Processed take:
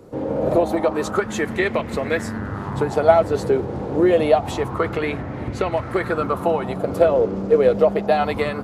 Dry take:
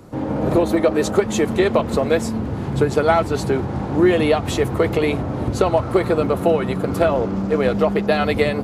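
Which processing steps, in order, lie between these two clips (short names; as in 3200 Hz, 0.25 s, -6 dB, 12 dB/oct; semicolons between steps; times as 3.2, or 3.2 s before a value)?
2.03–3.48 buzz 100 Hz, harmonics 20, -30 dBFS -5 dB/oct; 4.51–5.71 high shelf 11000 Hz -> 7100 Hz -9 dB; LFO bell 0.27 Hz 450–2100 Hz +11 dB; gain -5.5 dB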